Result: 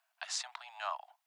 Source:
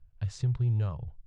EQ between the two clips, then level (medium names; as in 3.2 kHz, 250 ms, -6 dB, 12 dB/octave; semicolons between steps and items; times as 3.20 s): steep high-pass 660 Hz 96 dB/octave; +11.0 dB